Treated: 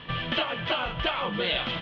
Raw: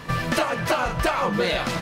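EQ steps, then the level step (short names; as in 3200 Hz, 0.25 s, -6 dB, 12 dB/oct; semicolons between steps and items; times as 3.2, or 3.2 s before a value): synth low-pass 3200 Hz, resonance Q 8.4; air absorption 150 m; -7.0 dB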